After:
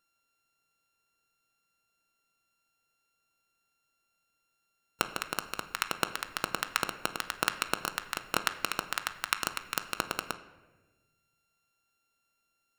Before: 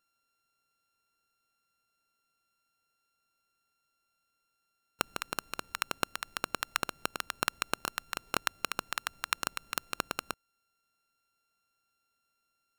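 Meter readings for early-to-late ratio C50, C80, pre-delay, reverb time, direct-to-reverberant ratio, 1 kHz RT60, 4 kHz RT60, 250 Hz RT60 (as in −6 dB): 12.5 dB, 14.5 dB, 6 ms, 1.2 s, 8.5 dB, 1.1 s, 0.80 s, 1.6 s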